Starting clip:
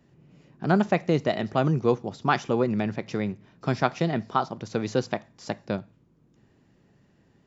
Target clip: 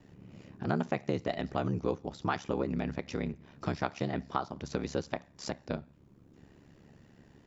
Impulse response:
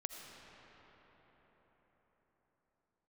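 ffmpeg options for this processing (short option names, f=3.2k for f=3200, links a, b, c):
-af "acompressor=threshold=-42dB:ratio=2,aeval=exprs='val(0)*sin(2*PI*35*n/s)':c=same,volume=6.5dB"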